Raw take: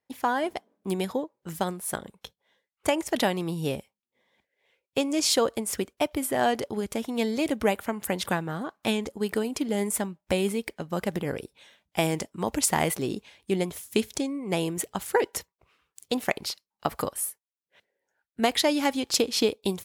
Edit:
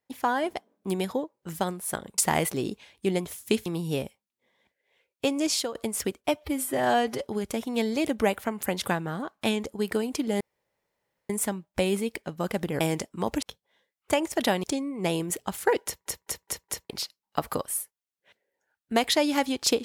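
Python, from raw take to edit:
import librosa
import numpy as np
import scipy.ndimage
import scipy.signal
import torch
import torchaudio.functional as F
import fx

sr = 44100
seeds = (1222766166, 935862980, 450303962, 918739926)

y = fx.edit(x, sr, fx.swap(start_s=2.18, length_s=1.21, other_s=12.63, other_length_s=1.48),
    fx.fade_out_to(start_s=5.18, length_s=0.3, floor_db=-19.0),
    fx.stretch_span(start_s=6.04, length_s=0.63, factor=1.5),
    fx.insert_room_tone(at_s=9.82, length_s=0.89),
    fx.cut(start_s=11.33, length_s=0.68),
    fx.stutter_over(start_s=15.32, slice_s=0.21, count=5), tone=tone)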